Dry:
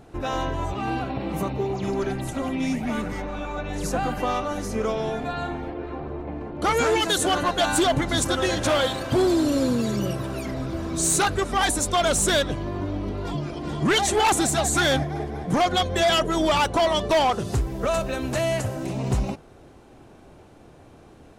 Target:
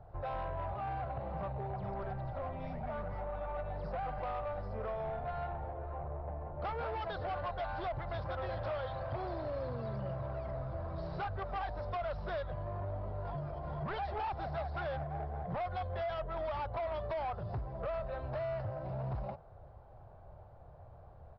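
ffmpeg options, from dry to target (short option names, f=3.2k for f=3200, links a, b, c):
-filter_complex "[0:a]firequalizer=gain_entry='entry(100,0);entry(270,-26);entry(590,-2);entry(2500,-24)':delay=0.05:min_phase=1,acrossover=split=130|1200[a][b][c];[a]acompressor=threshold=-41dB:ratio=4[d];[b]acompressor=threshold=-35dB:ratio=4[e];[c]acompressor=threshold=-42dB:ratio=4[f];[d][e][f]amix=inputs=3:normalize=0,aresample=11025,asoftclip=type=tanh:threshold=-32dB,aresample=44100"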